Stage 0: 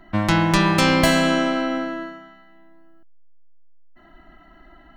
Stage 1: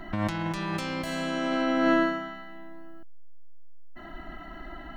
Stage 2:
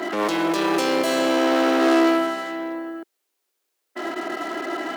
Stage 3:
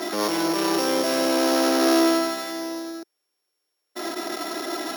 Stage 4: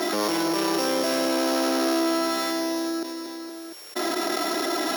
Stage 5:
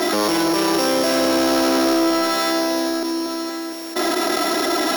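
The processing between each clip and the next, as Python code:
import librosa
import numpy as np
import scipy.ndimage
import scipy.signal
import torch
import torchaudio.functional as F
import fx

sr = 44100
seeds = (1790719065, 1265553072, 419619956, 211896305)

y1 = fx.over_compress(x, sr, threshold_db=-28.0, ratio=-1.0)
y2 = fx.dynamic_eq(y1, sr, hz=1900.0, q=1.5, threshold_db=-44.0, ratio=4.0, max_db=-4)
y2 = fx.leveller(y2, sr, passes=5)
y2 = fx.ladder_highpass(y2, sr, hz=320.0, resonance_pct=50)
y2 = y2 * librosa.db_to_amplitude(5.5)
y3 = np.r_[np.sort(y2[:len(y2) // 8 * 8].reshape(-1, 8), axis=1).ravel(), y2[len(y2) // 8 * 8:]]
y3 = y3 * librosa.db_to_amplitude(-1.5)
y4 = fx.echo_feedback(y3, sr, ms=232, feedback_pct=40, wet_db=-19.5)
y4 = fx.env_flatten(y4, sr, amount_pct=70)
y4 = y4 * librosa.db_to_amplitude(-5.0)
y5 = 10.0 ** (-17.0 / 20.0) * np.tanh(y4 / 10.0 ** (-17.0 / 20.0))
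y5 = y5 + 10.0 ** (-12.0 / 20.0) * np.pad(y5, (int(1069 * sr / 1000.0), 0))[:len(y5)]
y5 = y5 * librosa.db_to_amplitude(7.0)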